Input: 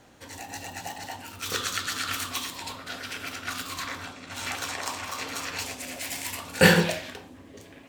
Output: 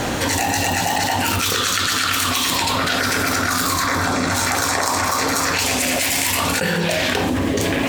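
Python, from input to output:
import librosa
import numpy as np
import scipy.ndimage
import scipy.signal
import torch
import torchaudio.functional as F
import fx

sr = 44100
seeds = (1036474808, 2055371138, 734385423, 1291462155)

y = fx.peak_eq(x, sr, hz=2900.0, db=-13.0, octaves=0.63, at=(3.01, 5.54))
y = fx.env_flatten(y, sr, amount_pct=100)
y = F.gain(torch.from_numpy(y), -7.0).numpy()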